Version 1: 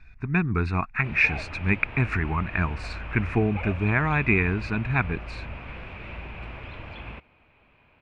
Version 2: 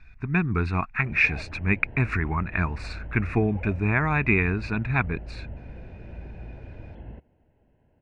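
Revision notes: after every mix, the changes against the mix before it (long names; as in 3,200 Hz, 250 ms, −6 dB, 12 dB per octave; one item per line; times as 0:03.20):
background: add moving average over 37 samples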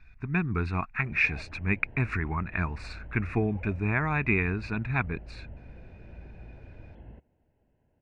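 speech −4.0 dB
background −6.5 dB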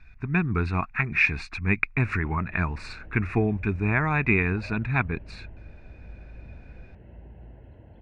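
speech +3.5 dB
background: entry +1.00 s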